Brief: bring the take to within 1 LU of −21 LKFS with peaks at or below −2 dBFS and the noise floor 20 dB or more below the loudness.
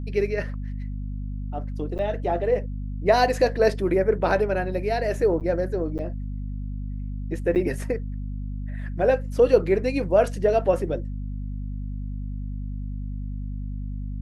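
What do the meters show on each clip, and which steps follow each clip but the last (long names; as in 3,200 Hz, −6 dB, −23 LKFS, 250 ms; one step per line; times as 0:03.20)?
number of dropouts 4; longest dropout 8.9 ms; mains hum 50 Hz; hum harmonics up to 250 Hz; level of the hum −28 dBFS; integrated loudness −25.5 LKFS; sample peak −5.0 dBFS; target loudness −21.0 LKFS
→ repair the gap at 0:01.98/0:05.40/0:05.98/0:07.55, 8.9 ms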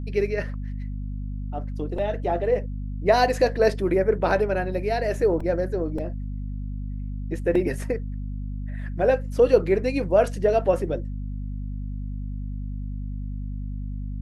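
number of dropouts 0; mains hum 50 Hz; hum harmonics up to 250 Hz; level of the hum −28 dBFS
→ mains-hum notches 50/100/150/200/250 Hz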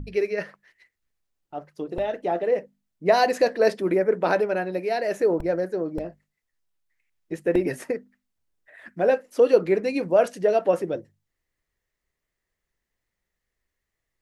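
mains hum none found; integrated loudness −23.5 LKFS; sample peak −5.5 dBFS; target loudness −21.0 LKFS
→ level +2.5 dB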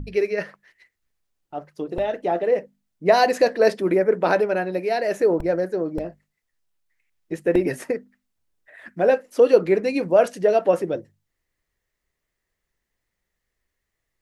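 integrated loudness −21.5 LKFS; sample peak −3.0 dBFS; background noise floor −81 dBFS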